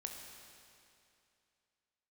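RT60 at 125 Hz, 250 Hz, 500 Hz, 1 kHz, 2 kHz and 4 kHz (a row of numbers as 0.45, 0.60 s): 2.6, 2.6, 2.6, 2.6, 2.6, 2.5 s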